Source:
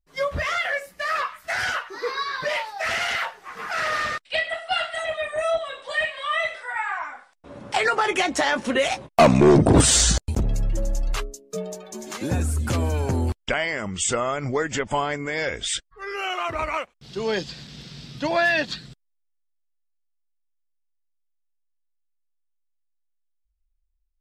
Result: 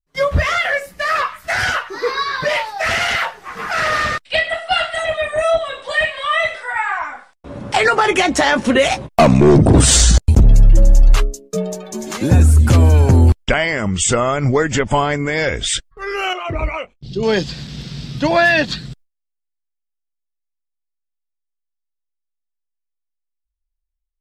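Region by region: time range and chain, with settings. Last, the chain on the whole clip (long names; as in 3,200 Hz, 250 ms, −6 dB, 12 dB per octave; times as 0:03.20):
0:16.33–0:17.23: spectral envelope exaggerated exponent 1.5 + parametric band 1,200 Hz −10 dB 1.4 octaves + double-tracking delay 22 ms −10 dB
whole clip: noise gate with hold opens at −43 dBFS; low-shelf EQ 200 Hz +9 dB; boost into a limiter +8.5 dB; level −1.5 dB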